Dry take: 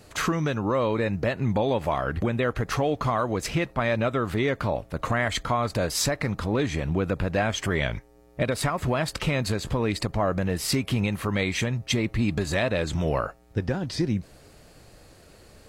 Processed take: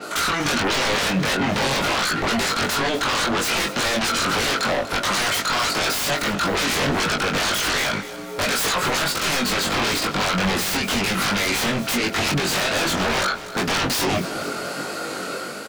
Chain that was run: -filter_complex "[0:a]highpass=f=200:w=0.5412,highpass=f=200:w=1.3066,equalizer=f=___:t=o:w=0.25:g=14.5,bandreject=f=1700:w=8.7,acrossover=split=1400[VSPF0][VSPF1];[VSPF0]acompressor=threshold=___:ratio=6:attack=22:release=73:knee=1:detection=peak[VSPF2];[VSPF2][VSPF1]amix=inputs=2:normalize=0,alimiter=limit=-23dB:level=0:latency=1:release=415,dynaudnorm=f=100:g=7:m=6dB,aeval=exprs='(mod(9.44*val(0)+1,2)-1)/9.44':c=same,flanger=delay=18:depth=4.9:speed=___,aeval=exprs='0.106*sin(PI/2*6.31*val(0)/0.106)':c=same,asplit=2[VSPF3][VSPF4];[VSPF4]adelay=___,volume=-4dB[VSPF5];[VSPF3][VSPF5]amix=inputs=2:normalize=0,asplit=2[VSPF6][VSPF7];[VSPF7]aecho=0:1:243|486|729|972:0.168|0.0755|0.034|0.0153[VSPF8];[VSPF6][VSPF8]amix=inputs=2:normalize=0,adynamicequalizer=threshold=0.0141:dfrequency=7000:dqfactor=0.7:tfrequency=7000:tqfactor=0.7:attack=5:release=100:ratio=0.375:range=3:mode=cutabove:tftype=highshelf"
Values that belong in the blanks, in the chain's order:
1400, -36dB, 1.4, 21